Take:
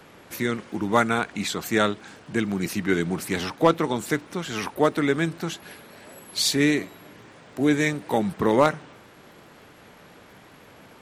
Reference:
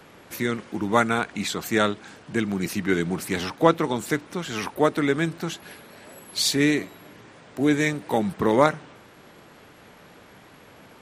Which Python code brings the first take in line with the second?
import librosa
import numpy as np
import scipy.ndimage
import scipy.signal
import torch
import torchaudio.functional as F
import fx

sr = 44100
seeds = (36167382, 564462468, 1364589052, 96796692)

y = fx.fix_declip(x, sr, threshold_db=-7.5)
y = fx.fix_declick_ar(y, sr, threshold=6.5)